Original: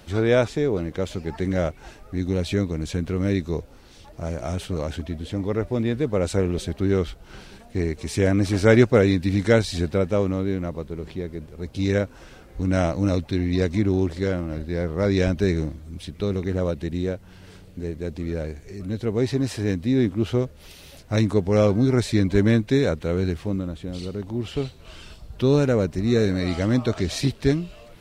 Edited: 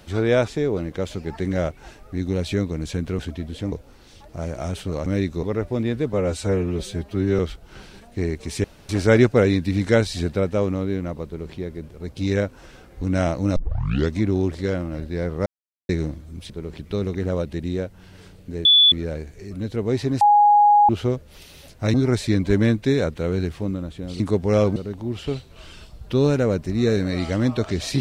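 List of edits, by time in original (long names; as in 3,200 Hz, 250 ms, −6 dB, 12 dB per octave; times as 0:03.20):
0:03.19–0:03.56: swap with 0:04.90–0:05.43
0:06.13–0:06.97: time-stretch 1.5×
0:08.22–0:08.47: fill with room tone
0:10.84–0:11.13: duplicate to 0:16.08
0:13.14: tape start 0.56 s
0:15.04–0:15.47: silence
0:17.94–0:18.21: beep over 3,450 Hz −10 dBFS
0:19.50–0:20.18: beep over 828 Hz −10.5 dBFS
0:21.23–0:21.79: move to 0:24.05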